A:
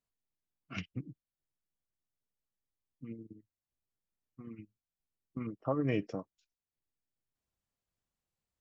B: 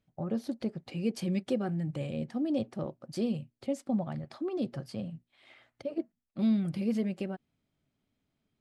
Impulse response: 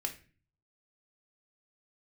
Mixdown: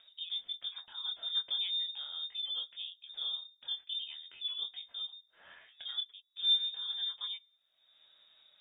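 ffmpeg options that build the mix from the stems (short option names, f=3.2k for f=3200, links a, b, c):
-filter_complex "[0:a]volume=-11dB[a];[1:a]flanger=delay=19.5:depth=5.9:speed=0.42,volume=-0.5dB,asplit=3[b][c][d];[c]volume=-16dB[e];[d]apad=whole_len=379690[f];[a][f]sidechaingate=range=-33dB:threshold=-57dB:ratio=16:detection=peak[g];[2:a]atrim=start_sample=2205[h];[e][h]afir=irnorm=-1:irlink=0[i];[g][b][i]amix=inputs=3:normalize=0,acompressor=mode=upward:threshold=-41dB:ratio=2.5,flanger=delay=4.5:depth=7.8:regen=35:speed=0.81:shape=sinusoidal,lowpass=f=3.2k:t=q:w=0.5098,lowpass=f=3.2k:t=q:w=0.6013,lowpass=f=3.2k:t=q:w=0.9,lowpass=f=3.2k:t=q:w=2.563,afreqshift=-3800"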